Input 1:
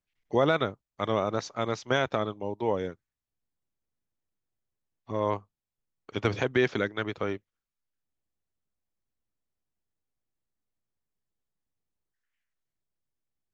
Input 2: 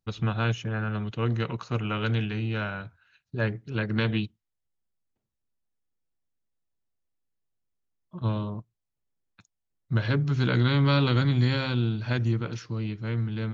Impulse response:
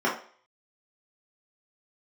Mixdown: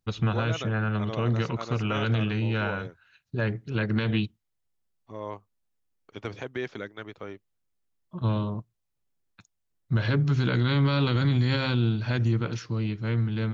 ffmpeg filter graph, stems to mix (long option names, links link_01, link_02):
-filter_complex "[0:a]volume=-8.5dB[link_01];[1:a]volume=2.5dB[link_02];[link_01][link_02]amix=inputs=2:normalize=0,alimiter=limit=-15.5dB:level=0:latency=1"